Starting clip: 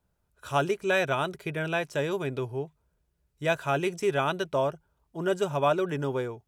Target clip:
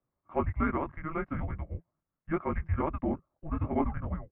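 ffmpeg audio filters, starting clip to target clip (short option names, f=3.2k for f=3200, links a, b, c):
-af "flanger=delay=19.5:depth=7.6:speed=1.6,atempo=1.5,highpass=f=200:t=q:w=0.5412,highpass=f=200:t=q:w=1.307,lowpass=f=2.2k:t=q:w=0.5176,lowpass=f=2.2k:t=q:w=0.7071,lowpass=f=2.2k:t=q:w=1.932,afreqshift=-320"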